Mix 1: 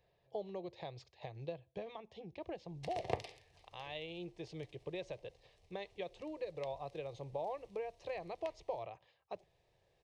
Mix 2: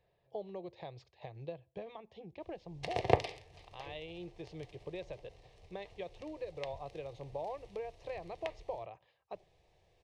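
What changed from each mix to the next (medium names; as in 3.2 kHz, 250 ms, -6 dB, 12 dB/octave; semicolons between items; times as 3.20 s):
background +10.5 dB; master: add treble shelf 5.4 kHz -9.5 dB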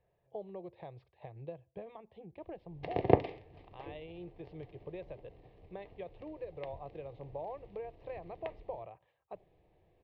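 background: add peaking EQ 260 Hz +12.5 dB 1.2 oct; master: add distance through air 420 m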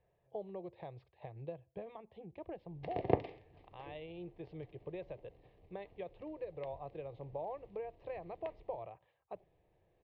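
background -6.0 dB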